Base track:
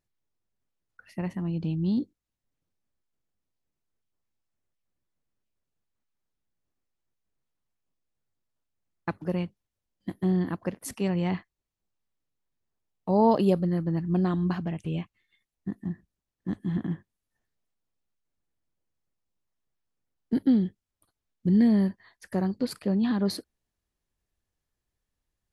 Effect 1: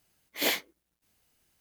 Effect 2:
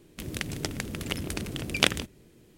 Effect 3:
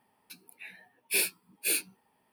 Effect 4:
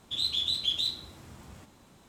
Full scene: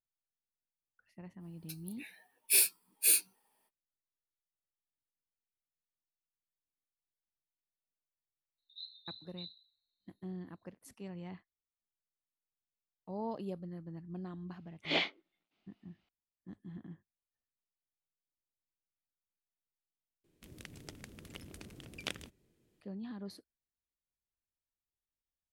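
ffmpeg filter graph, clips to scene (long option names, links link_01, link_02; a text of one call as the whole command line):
ffmpeg -i bed.wav -i cue0.wav -i cue1.wav -i cue2.wav -i cue3.wav -filter_complex "[0:a]volume=-18.5dB[link_01];[3:a]bass=frequency=250:gain=-11,treble=frequency=4000:gain=10[link_02];[4:a]asuperpass=centerf=4000:order=20:qfactor=5.3[link_03];[1:a]highpass=260,equalizer=frequency=490:width_type=q:width=4:gain=-8,equalizer=frequency=1000:width_type=q:width=4:gain=-5,equalizer=frequency=1700:width_type=q:width=4:gain=-10,lowpass=frequency=3600:width=0.5412,lowpass=frequency=3600:width=1.3066[link_04];[link_01]asplit=2[link_05][link_06];[link_05]atrim=end=20.244[link_07];[2:a]atrim=end=2.57,asetpts=PTS-STARTPTS,volume=-17.5dB[link_08];[link_06]atrim=start=22.806[link_09];[link_02]atrim=end=2.32,asetpts=PTS-STARTPTS,volume=-6.5dB,afade=type=in:duration=0.05,afade=type=out:start_time=2.27:duration=0.05,adelay=1390[link_10];[link_03]atrim=end=2.08,asetpts=PTS-STARTPTS,volume=-17.5dB,afade=type=in:duration=0.004:curve=hsin,afade=type=out:start_time=2.076:duration=0.004:curve=hsin,adelay=378378S[link_11];[link_04]atrim=end=1.6,asetpts=PTS-STARTPTS,afade=type=in:duration=0.004:curve=hsin,afade=type=out:start_time=1.596:duration=0.004:curve=hsin,adelay=14490[link_12];[link_07][link_08]acrossfade=duration=0.004:curve1=hsin:curve2=hsin[link_13];[link_13][link_09]acrossfade=duration=0.004:curve1=hsin:curve2=hsin[link_14];[link_14][link_10][link_11][link_12]amix=inputs=4:normalize=0" out.wav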